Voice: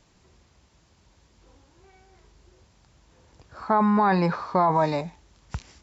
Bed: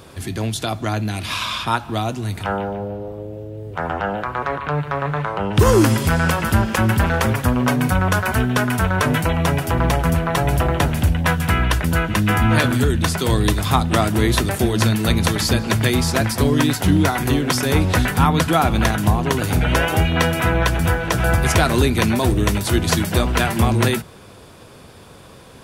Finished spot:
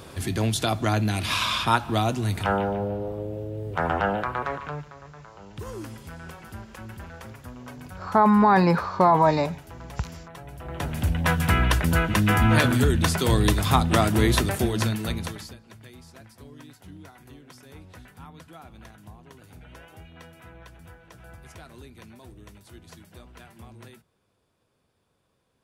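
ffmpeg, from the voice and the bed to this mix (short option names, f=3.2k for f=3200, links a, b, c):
-filter_complex "[0:a]adelay=4450,volume=3dB[a];[1:a]volume=19.5dB,afade=t=out:st=4.04:d=0.89:silence=0.0749894,afade=t=in:st=10.6:d=0.82:silence=0.0944061,afade=t=out:st=14.27:d=1.29:silence=0.0473151[b];[a][b]amix=inputs=2:normalize=0"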